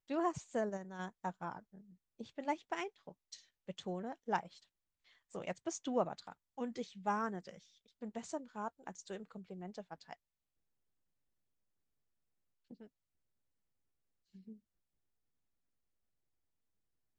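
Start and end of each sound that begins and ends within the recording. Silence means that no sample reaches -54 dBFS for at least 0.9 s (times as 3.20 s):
12.71–12.87 s
14.35–14.56 s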